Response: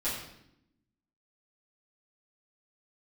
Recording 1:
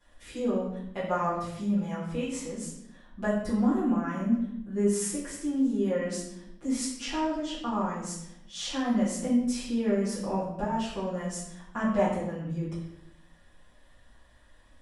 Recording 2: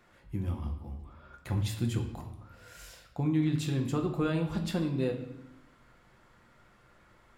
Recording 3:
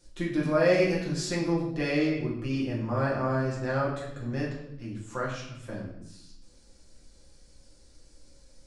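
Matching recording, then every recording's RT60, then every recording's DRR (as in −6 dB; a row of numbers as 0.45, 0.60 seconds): 1; 0.75, 0.75, 0.75 seconds; −13.0, 2.5, −6.5 decibels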